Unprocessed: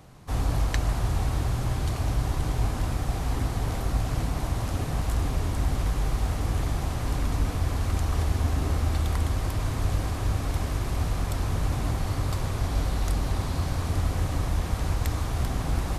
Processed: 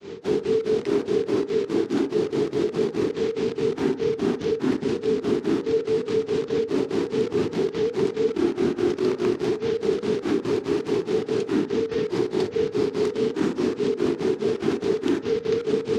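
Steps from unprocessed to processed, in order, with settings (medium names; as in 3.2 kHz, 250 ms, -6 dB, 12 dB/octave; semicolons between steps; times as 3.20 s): granulator 210 ms, grains 4.8 per s, pitch spread up and down by 12 st; dynamic bell 230 Hz, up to +8 dB, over -50 dBFS, Q 2.4; frequency shift -480 Hz; in parallel at -9 dB: word length cut 6-bit, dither none; on the sum: Chebyshev band-pass 130–4600 Hz, order 2; on a send at -17.5 dB: reverberation, pre-delay 3 ms; on the sum: level flattener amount 50%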